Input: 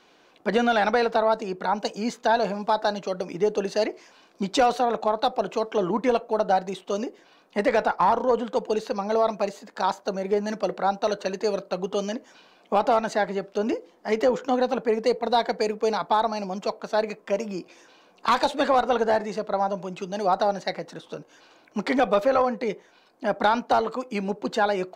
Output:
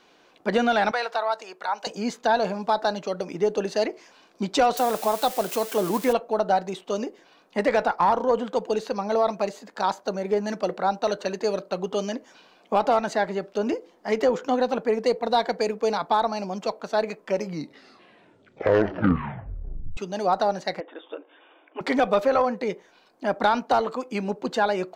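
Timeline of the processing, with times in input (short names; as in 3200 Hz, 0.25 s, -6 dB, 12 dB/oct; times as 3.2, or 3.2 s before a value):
0.91–1.87 HPF 800 Hz
4.77–6.13 switching spikes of -23 dBFS
17.21 tape stop 2.76 s
20.8–21.81 brick-wall FIR band-pass 260–3700 Hz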